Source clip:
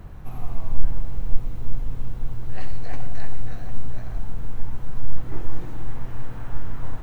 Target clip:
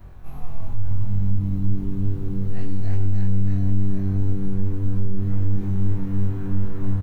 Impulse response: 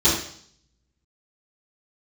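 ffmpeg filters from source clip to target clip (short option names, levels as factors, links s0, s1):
-filter_complex "[0:a]afftfilt=real='re':imag='-im':win_size=2048:overlap=0.75,alimiter=limit=0.224:level=0:latency=1,asplit=6[s0][s1][s2][s3][s4][s5];[s1]adelay=311,afreqshift=97,volume=0.316[s6];[s2]adelay=622,afreqshift=194,volume=0.146[s7];[s3]adelay=933,afreqshift=291,volume=0.0668[s8];[s4]adelay=1244,afreqshift=388,volume=0.0309[s9];[s5]adelay=1555,afreqshift=485,volume=0.0141[s10];[s0][s6][s7][s8][s9][s10]amix=inputs=6:normalize=0,volume=1.12"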